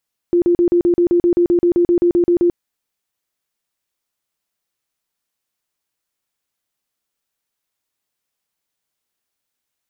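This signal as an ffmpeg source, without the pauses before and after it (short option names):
-f lavfi -i "aevalsrc='0.316*sin(2*PI*348*mod(t,0.13))*lt(mod(t,0.13),31/348)':d=2.21:s=44100"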